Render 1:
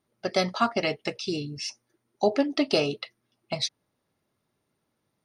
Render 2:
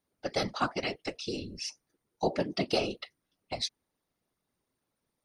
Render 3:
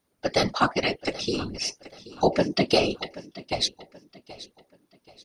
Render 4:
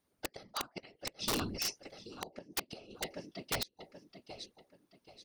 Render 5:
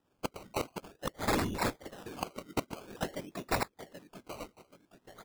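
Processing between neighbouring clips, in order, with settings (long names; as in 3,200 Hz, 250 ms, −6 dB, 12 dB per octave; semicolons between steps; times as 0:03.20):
high-shelf EQ 5,200 Hz +5 dB; random phases in short frames; level −6.5 dB
repeating echo 780 ms, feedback 34%, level −17.5 dB; level +8 dB
gate with flip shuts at −14 dBFS, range −27 dB; wrap-around overflow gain 21 dB; level −5.5 dB
sample-and-hold swept by an LFO 20×, swing 60% 0.5 Hz; level +4.5 dB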